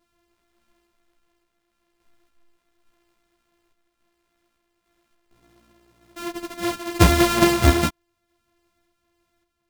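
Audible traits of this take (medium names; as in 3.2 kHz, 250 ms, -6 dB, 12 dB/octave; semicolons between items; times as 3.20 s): a buzz of ramps at a fixed pitch in blocks of 128 samples; random-step tremolo; a shimmering, thickened sound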